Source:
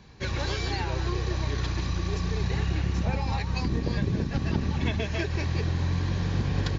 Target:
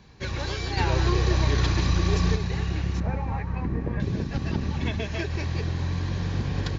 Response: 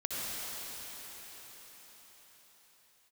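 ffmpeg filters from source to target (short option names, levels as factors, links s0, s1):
-filter_complex "[0:a]asettb=1/sr,asplit=3[s0][s1][s2];[s0]atrim=end=0.774[s3];[s1]atrim=start=0.77:end=2.36,asetpts=PTS-STARTPTS,afade=t=in:d=0.004:c=qsin,afade=t=out:st=1.586:d=0.004:c=qsin,acontrast=78[s4];[s2]atrim=start=2.356[s5];[s3][s4]acrossfade=d=0.004:c1=hsin:c2=qsin[s6];[s6][s5]acrossfade=d=0.004:c1=qsin:c2=hsin,asettb=1/sr,asplit=3[s7][s8][s9];[s7]atrim=end=3.004[s10];[s8]atrim=start=3:end=4,asetpts=PTS-STARTPTS,afade=t=in:d=0.004:c=qsin,afade=t=out:st=0.996:d=0.004:c=qsin,lowpass=f=2100:w=0.5412,lowpass=f=2100:w=1.3066[s11];[s9]atrim=start=3.996[s12];[s10][s11]acrossfade=d=0.004:c1=hsin:c2=qsin[s13];[s13][s12]acrossfade=d=0.004:c1=qsin:c2=hsin,asplit=2[s14][s15];[1:a]atrim=start_sample=2205[s16];[s15][s16]afir=irnorm=-1:irlink=0,volume=0.0596[s17];[s14][s17]amix=inputs=2:normalize=0,volume=0.891"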